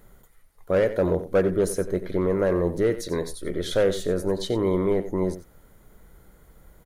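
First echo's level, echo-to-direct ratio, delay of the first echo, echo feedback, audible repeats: -13.0 dB, -13.0 dB, 91 ms, no steady repeat, 1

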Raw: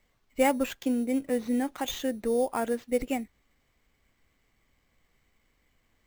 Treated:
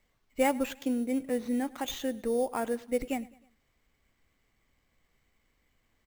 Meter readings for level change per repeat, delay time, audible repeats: -6.0 dB, 0.104 s, 3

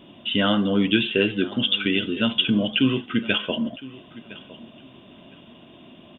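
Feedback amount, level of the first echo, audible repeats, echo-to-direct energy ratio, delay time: 21%, -19.0 dB, 2, -19.0 dB, 1.011 s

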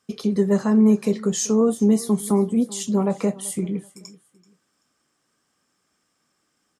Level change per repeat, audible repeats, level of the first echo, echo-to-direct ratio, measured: -11.5 dB, 2, -21.0 dB, -20.5 dB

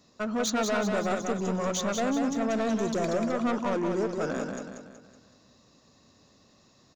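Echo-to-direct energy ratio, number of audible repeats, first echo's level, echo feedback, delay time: -4.0 dB, 5, -5.0 dB, 46%, 0.187 s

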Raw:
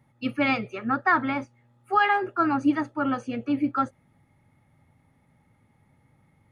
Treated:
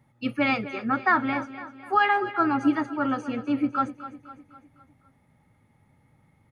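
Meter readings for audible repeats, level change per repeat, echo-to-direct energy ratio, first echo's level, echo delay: 4, -6.0 dB, -12.5 dB, -14.0 dB, 0.253 s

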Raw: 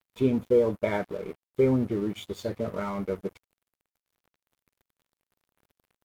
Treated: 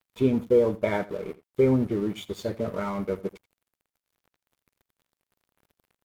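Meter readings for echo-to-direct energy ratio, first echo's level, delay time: -19.0 dB, -19.0 dB, 84 ms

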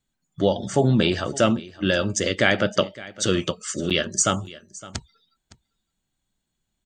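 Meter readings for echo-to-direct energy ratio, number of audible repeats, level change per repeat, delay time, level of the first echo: -19.0 dB, 1, no steady repeat, 0.562 s, -19.0 dB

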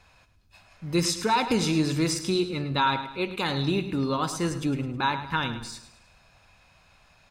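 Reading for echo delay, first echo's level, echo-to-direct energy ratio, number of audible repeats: 0.106 s, -12.0 dB, -11.0 dB, 4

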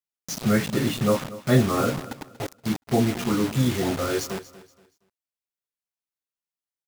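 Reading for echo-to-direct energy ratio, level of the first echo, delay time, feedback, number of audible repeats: -16.5 dB, -17.0 dB, 0.236 s, 30%, 2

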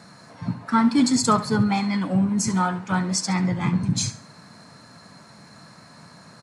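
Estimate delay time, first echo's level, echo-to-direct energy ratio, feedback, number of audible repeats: 69 ms, -14.5 dB, -14.0 dB, 30%, 2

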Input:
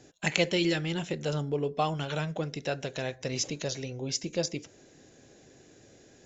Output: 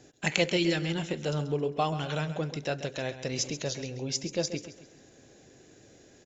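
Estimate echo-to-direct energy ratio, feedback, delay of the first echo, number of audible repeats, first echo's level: -12.0 dB, 36%, 0.134 s, 3, -12.5 dB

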